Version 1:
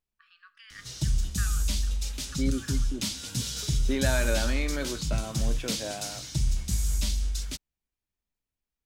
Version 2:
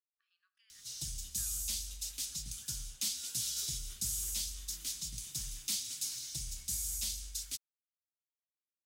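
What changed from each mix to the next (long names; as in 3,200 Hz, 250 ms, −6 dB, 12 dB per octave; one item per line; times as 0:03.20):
first voice −11.0 dB
second voice: muted
master: add first-order pre-emphasis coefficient 0.9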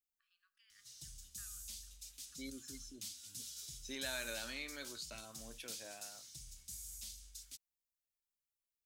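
second voice: unmuted
background −12.0 dB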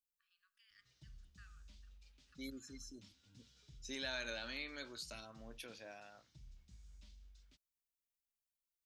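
background: add head-to-tape spacing loss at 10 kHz 39 dB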